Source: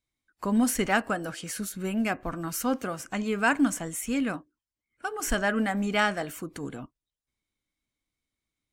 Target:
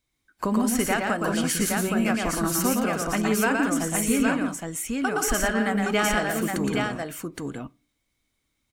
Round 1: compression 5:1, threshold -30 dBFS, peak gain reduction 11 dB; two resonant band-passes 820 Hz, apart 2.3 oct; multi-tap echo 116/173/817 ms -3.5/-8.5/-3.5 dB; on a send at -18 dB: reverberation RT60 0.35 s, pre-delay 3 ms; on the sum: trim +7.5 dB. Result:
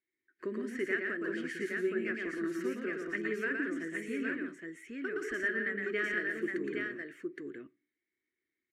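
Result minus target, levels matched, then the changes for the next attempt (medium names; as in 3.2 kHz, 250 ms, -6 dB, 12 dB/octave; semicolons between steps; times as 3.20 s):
1 kHz band -11.0 dB
remove: two resonant band-passes 820 Hz, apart 2.3 oct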